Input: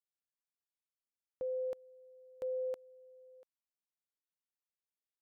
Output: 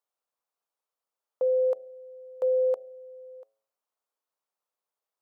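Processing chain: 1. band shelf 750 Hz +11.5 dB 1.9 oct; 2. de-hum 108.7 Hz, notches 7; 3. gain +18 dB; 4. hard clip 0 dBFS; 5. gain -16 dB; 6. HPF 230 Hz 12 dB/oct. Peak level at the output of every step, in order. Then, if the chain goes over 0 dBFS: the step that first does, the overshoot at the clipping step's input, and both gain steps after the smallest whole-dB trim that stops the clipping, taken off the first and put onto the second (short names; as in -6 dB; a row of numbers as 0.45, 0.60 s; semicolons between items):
-22.0, -21.5, -3.5, -3.5, -19.5, -19.5 dBFS; no overload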